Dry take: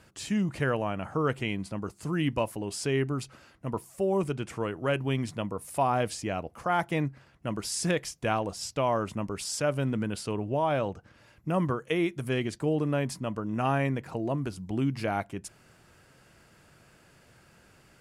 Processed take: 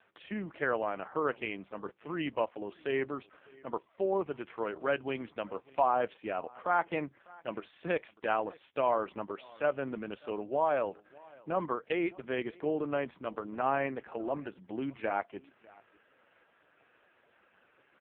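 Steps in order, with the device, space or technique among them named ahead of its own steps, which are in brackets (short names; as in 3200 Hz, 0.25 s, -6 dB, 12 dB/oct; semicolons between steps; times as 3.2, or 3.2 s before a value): satellite phone (BPF 380–3200 Hz; echo 0.598 s -24 dB; AMR-NB 4.75 kbps 8000 Hz)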